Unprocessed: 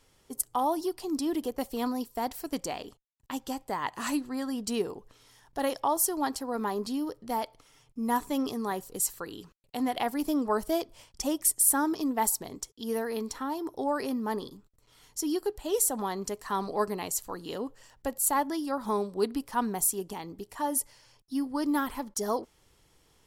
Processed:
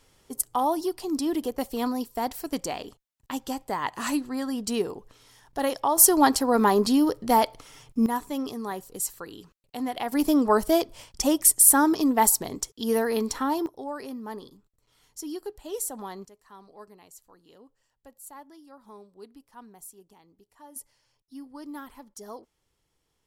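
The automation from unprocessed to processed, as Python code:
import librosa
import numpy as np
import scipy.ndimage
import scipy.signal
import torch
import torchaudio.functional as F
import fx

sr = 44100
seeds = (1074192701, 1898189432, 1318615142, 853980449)

y = fx.gain(x, sr, db=fx.steps((0.0, 3.0), (5.98, 11.0), (8.06, -1.0), (10.12, 7.0), (13.66, -5.5), (16.25, -18.5), (20.76, -11.5)))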